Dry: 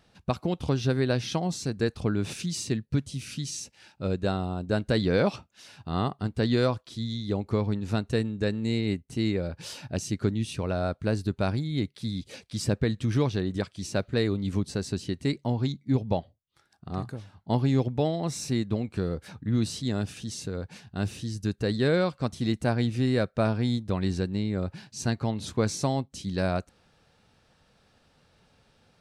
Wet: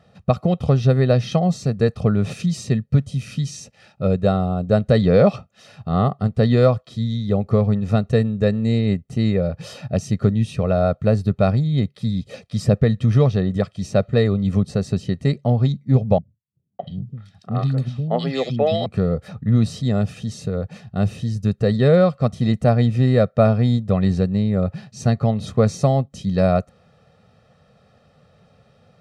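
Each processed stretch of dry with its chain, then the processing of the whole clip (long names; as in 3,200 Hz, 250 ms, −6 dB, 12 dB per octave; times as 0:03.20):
0:16.18–0:18.86: meter weighting curve D + three-band delay without the direct sound lows, mids, highs 610/690 ms, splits 250/2,100 Hz
whole clip: high-pass filter 160 Hz 12 dB per octave; spectral tilt −3 dB per octave; comb filter 1.6 ms, depth 74%; level +5 dB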